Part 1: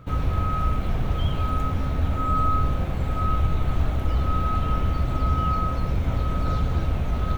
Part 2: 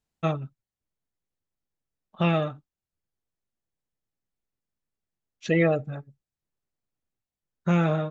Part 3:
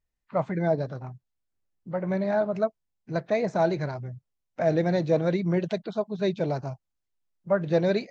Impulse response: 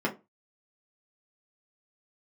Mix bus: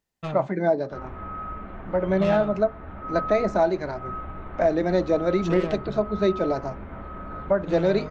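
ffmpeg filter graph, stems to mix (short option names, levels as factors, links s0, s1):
-filter_complex "[0:a]lowpass=1900,equalizer=f=1500:t=o:w=1.8:g=9,adelay=850,volume=0.2,asplit=2[s0][s1];[s1]volume=0.211[s2];[1:a]asoftclip=type=tanh:threshold=0.0596,volume=0.841[s3];[2:a]highpass=160,volume=1.33,asplit=2[s4][s5];[s5]volume=0.141[s6];[3:a]atrim=start_sample=2205[s7];[s2][s6]amix=inputs=2:normalize=0[s8];[s8][s7]afir=irnorm=-1:irlink=0[s9];[s0][s3][s4][s9]amix=inputs=4:normalize=0,alimiter=limit=0.282:level=0:latency=1:release=478"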